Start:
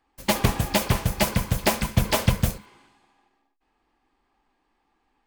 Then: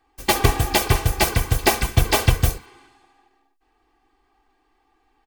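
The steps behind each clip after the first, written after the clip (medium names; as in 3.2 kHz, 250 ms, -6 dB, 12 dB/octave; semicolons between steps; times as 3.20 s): comb 2.6 ms, depth 73%; trim +3 dB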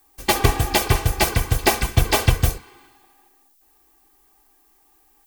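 added noise violet -60 dBFS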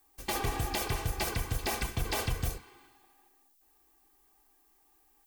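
peak limiter -13 dBFS, peak gain reduction 11.5 dB; trim -8 dB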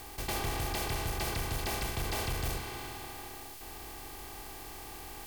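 spectral levelling over time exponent 0.4; in parallel at -3 dB: gain riding within 4 dB; on the sum: saturation -17.5 dBFS, distortion -17 dB; trim -8.5 dB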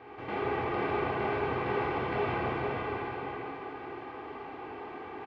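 cabinet simulation 200–2200 Hz, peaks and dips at 420 Hz +4 dB, 680 Hz -3 dB, 1.8 kHz -5 dB; delay 488 ms -8 dB; plate-style reverb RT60 2.9 s, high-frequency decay 0.9×, DRR -6.5 dB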